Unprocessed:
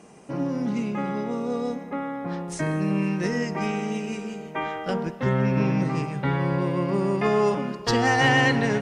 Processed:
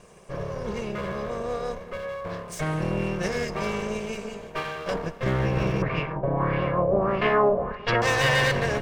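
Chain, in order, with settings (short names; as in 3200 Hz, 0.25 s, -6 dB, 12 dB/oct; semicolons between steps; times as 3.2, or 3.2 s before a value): minimum comb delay 1.8 ms; 5.82–8.02 LFO low-pass sine 1.6 Hz 590–2800 Hz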